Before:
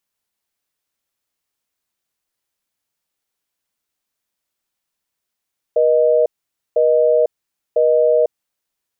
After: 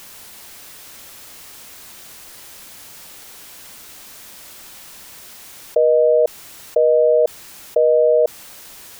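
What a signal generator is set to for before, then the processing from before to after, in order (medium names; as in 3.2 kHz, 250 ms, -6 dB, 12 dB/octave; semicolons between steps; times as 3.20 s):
call progress tone busy tone, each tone -13.5 dBFS 2.73 s
level flattener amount 100%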